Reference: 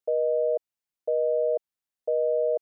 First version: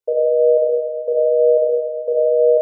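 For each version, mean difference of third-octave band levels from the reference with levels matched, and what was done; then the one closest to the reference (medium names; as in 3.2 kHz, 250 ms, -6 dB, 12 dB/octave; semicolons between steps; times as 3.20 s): 1.5 dB: peaking EQ 500 Hz +6.5 dB 1.2 oct; simulated room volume 2000 m³, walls mixed, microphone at 4.9 m; trim -3.5 dB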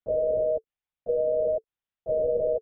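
6.5 dB: band-stop 440 Hz, Q 13; LPC vocoder at 8 kHz whisper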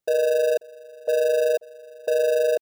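9.0 dB: echo from a far wall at 92 m, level -23 dB; in parallel at -10 dB: sample-and-hold 41×; on the sum: trim +3.5 dB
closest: first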